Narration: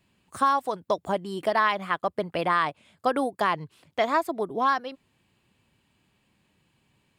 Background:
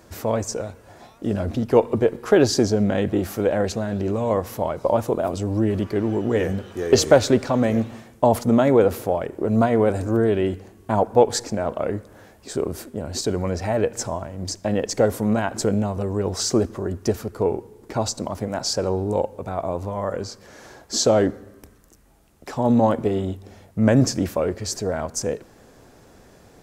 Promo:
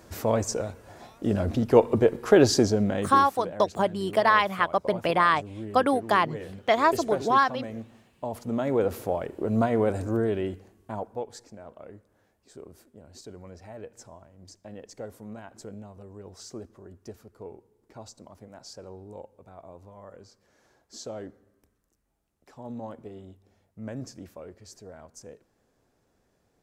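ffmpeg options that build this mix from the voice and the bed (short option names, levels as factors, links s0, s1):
-filter_complex "[0:a]adelay=2700,volume=1.33[s0];[1:a]volume=2.99,afade=t=out:st=2.52:d=0.87:silence=0.177828,afade=t=in:st=8.32:d=0.79:silence=0.281838,afade=t=out:st=10.06:d=1.2:silence=0.177828[s1];[s0][s1]amix=inputs=2:normalize=0"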